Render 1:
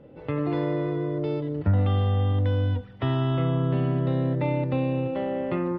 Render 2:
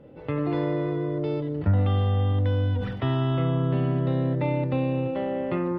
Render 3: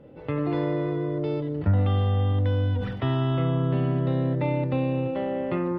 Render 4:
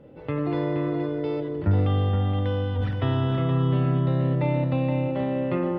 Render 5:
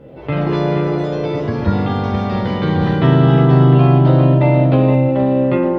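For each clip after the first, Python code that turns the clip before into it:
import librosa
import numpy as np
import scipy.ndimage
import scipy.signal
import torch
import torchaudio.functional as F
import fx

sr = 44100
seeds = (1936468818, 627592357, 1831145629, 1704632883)

y1 = fx.sustainer(x, sr, db_per_s=45.0)
y2 = y1
y3 = y2 + 10.0 ** (-7.0 / 20.0) * np.pad(y2, (int(472 * sr / 1000.0), 0))[:len(y2)]
y4 = fx.doubler(y3, sr, ms=15.0, db=-3.5)
y4 = fx.echo_pitch(y4, sr, ms=81, semitones=3, count=3, db_per_echo=-6.0)
y4 = y4 * librosa.db_to_amplitude(7.5)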